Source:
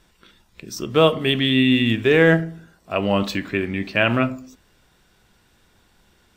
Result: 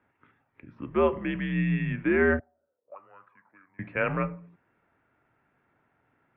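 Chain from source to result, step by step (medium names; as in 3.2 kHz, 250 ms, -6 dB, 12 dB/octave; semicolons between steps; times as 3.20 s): 2.39–3.79 s: auto-wah 540–1500 Hz, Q 14, up, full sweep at -17 dBFS; mistuned SSB -85 Hz 170–2300 Hz; bass shelf 120 Hz -4.5 dB; trim -7 dB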